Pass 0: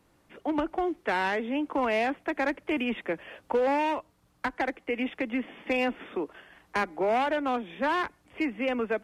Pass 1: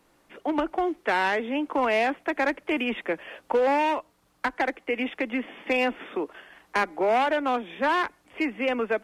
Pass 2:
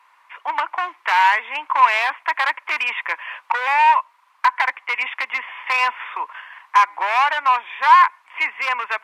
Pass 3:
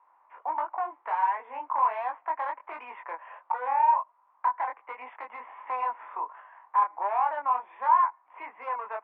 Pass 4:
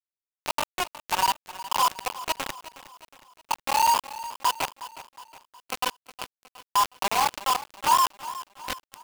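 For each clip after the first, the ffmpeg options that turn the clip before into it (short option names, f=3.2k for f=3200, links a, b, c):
-af "equalizer=f=89:w=0.61:g=-10.5,volume=4dB"
-af "aeval=exprs='0.106*(abs(mod(val(0)/0.106+3,4)-2)-1)':c=same,highpass=f=1k:t=q:w=9.5,equalizer=f=2.2k:w=1:g=14.5,volume=-4dB"
-filter_complex "[0:a]flanger=delay=19.5:depth=5.2:speed=1.4,asplit=2[a][b];[b]acompressor=threshold=-28dB:ratio=6,volume=-2.5dB[c];[a][c]amix=inputs=2:normalize=0,lowpass=f=770:t=q:w=1.5,volume=-7dB"
-af "aeval=exprs='val(0)+0.5*0.0126*sgn(val(0))':c=same,acrusher=bits=3:mix=0:aa=0.000001,aecho=1:1:364|728|1092|1456:0.168|0.0806|0.0387|0.0186"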